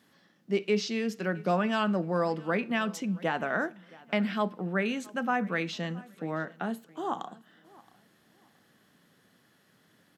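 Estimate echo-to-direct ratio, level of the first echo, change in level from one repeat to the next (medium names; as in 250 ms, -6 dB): -22.5 dB, -23.0 dB, -11.5 dB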